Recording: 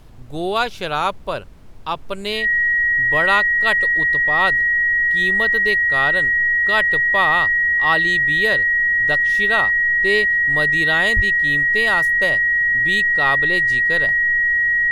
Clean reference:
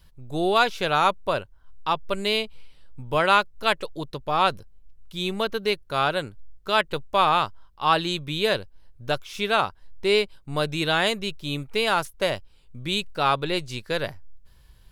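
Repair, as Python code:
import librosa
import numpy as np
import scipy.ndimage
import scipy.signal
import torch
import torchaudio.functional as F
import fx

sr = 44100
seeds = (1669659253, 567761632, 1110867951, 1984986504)

y = fx.notch(x, sr, hz=1900.0, q=30.0)
y = fx.fix_deplosive(y, sr, at_s=(11.15,))
y = fx.noise_reduce(y, sr, print_start_s=1.37, print_end_s=1.87, reduce_db=24.0)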